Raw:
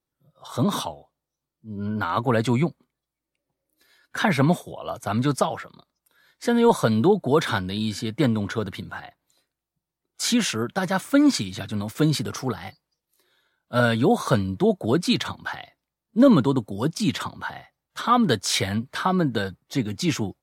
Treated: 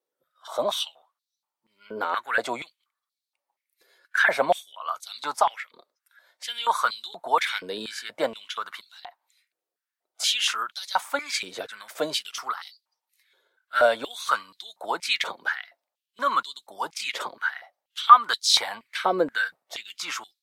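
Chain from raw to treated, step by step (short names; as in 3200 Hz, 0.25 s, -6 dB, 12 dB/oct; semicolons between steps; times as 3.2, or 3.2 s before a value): stepped high-pass 4.2 Hz 470–4000 Hz; gain -3 dB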